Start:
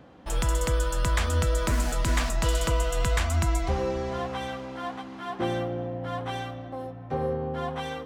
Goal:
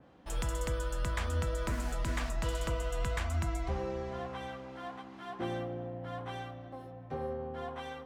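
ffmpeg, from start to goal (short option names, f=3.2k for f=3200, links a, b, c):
-af "bandreject=f=51.87:t=h:w=4,bandreject=f=103.74:t=h:w=4,bandreject=f=155.61:t=h:w=4,bandreject=f=207.48:t=h:w=4,bandreject=f=259.35:t=h:w=4,bandreject=f=311.22:t=h:w=4,bandreject=f=363.09:t=h:w=4,bandreject=f=414.96:t=h:w=4,bandreject=f=466.83:t=h:w=4,bandreject=f=518.7:t=h:w=4,bandreject=f=570.57:t=h:w=4,bandreject=f=622.44:t=h:w=4,bandreject=f=674.31:t=h:w=4,bandreject=f=726.18:t=h:w=4,bandreject=f=778.05:t=h:w=4,bandreject=f=829.92:t=h:w=4,bandreject=f=881.79:t=h:w=4,bandreject=f=933.66:t=h:w=4,bandreject=f=985.53:t=h:w=4,bandreject=f=1.0374k:t=h:w=4,bandreject=f=1.08927k:t=h:w=4,bandreject=f=1.14114k:t=h:w=4,bandreject=f=1.19301k:t=h:w=4,bandreject=f=1.24488k:t=h:w=4,bandreject=f=1.29675k:t=h:w=4,bandreject=f=1.34862k:t=h:w=4,bandreject=f=1.40049k:t=h:w=4,bandreject=f=1.45236k:t=h:w=4,adynamicequalizer=threshold=0.00398:dfrequency=2900:dqfactor=0.7:tfrequency=2900:tqfactor=0.7:attack=5:release=100:ratio=0.375:range=2.5:mode=cutabove:tftype=highshelf,volume=-7.5dB"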